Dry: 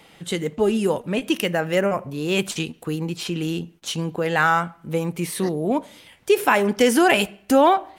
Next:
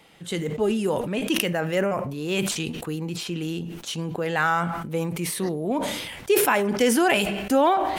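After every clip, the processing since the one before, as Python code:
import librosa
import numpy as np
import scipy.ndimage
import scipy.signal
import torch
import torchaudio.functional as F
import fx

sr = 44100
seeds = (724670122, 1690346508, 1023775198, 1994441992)

y = fx.sustainer(x, sr, db_per_s=39.0)
y = F.gain(torch.from_numpy(y), -4.0).numpy()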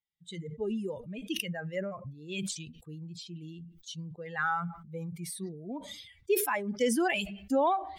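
y = fx.bin_expand(x, sr, power=2.0)
y = F.gain(torch.from_numpy(y), -5.0).numpy()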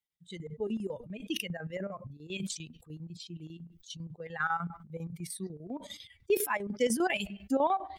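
y = fx.chopper(x, sr, hz=10.0, depth_pct=65, duty_pct=70)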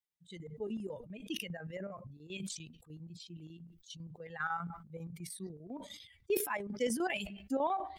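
y = fx.sustainer(x, sr, db_per_s=90.0)
y = F.gain(torch.from_numpy(y), -5.5).numpy()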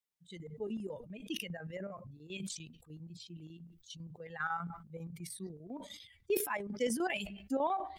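y = fx.hum_notches(x, sr, base_hz=60, count=2)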